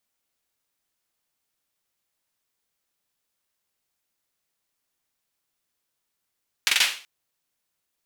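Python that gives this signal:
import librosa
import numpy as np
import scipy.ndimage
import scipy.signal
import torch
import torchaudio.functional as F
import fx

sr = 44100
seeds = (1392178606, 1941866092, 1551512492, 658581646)

y = fx.drum_clap(sr, seeds[0], length_s=0.38, bursts=4, spacing_ms=44, hz=2700.0, decay_s=0.4)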